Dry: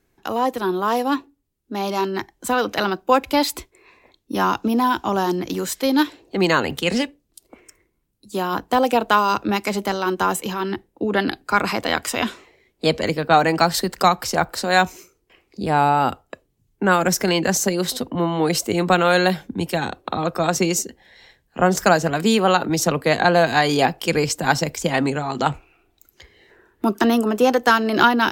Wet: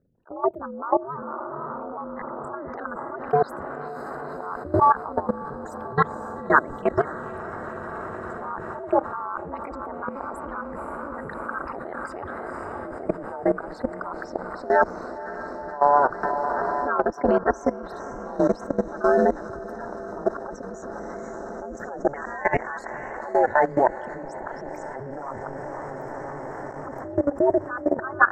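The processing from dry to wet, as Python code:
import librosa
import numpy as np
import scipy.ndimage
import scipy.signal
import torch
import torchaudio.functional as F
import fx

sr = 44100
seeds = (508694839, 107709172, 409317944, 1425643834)

p1 = fx.envelope_sharpen(x, sr, power=3.0)
p2 = fx.auto_swell(p1, sr, attack_ms=204.0)
p3 = fx.ring_mod(p2, sr, carrier_hz=1300.0, at=(22.14, 23.17))
p4 = fx.peak_eq(p3, sr, hz=550.0, db=3.0, octaves=1.2)
p5 = p4 + fx.echo_diffused(p4, sr, ms=508, feedback_pct=77, wet_db=-10, dry=0)
p6 = fx.level_steps(p5, sr, step_db=17)
p7 = fx.high_shelf_res(p6, sr, hz=2100.0, db=-13.0, q=3.0)
p8 = p7 * np.sin(2.0 * np.pi * 140.0 * np.arange(len(p7)) / sr)
p9 = fx.band_squash(p8, sr, depth_pct=100, at=(16.23, 17.25))
y = p9 * 10.0 ** (1.5 / 20.0)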